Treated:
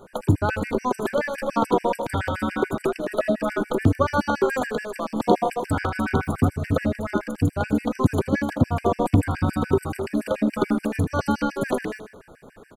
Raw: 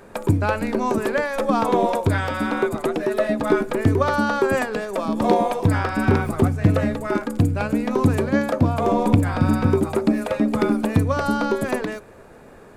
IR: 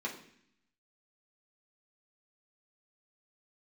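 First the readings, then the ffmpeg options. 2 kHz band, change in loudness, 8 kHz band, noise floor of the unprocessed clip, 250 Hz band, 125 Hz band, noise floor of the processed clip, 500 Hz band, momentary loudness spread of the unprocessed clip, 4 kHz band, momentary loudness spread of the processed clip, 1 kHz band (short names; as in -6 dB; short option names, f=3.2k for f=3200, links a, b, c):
-3.5 dB, -3.0 dB, -2.5 dB, -45 dBFS, -3.0 dB, -3.5 dB, -49 dBFS, -3.0 dB, 4 LU, -3.0 dB, 5 LU, -2.5 dB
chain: -af "aecho=1:1:79|158|237|316|395:0.266|0.136|0.0692|0.0353|0.018,afftfilt=real='re*gt(sin(2*PI*7*pts/sr)*(1-2*mod(floor(b*sr/1024/1500),2)),0)':imag='im*gt(sin(2*PI*7*pts/sr)*(1-2*mod(floor(b*sr/1024/1500),2)),0)':win_size=1024:overlap=0.75"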